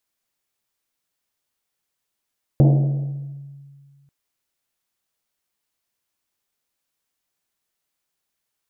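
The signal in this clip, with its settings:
drum after Risset length 1.49 s, pitch 140 Hz, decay 2.05 s, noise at 490 Hz, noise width 430 Hz, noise 15%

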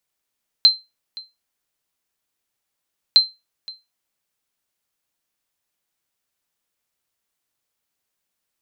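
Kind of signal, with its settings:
ping with an echo 4,110 Hz, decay 0.22 s, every 2.51 s, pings 2, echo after 0.52 s, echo −22.5 dB −3.5 dBFS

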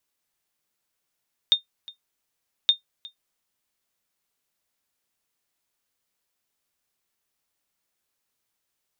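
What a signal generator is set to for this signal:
ping with an echo 3,650 Hz, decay 0.12 s, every 1.17 s, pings 2, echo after 0.36 s, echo −22.5 dB −8.5 dBFS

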